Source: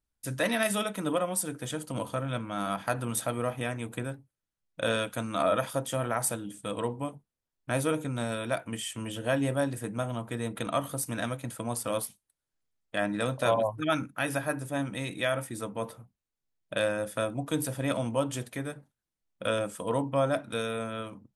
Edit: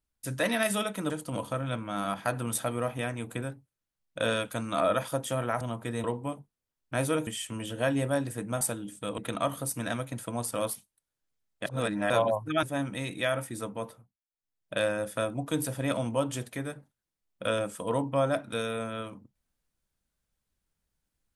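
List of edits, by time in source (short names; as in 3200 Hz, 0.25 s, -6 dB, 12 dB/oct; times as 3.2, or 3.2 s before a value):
1.1–1.72 cut
6.23–6.8 swap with 10.07–10.5
8.03–8.73 cut
12.98–13.42 reverse
13.95–14.63 cut
15.7–16.77 dip -23 dB, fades 0.49 s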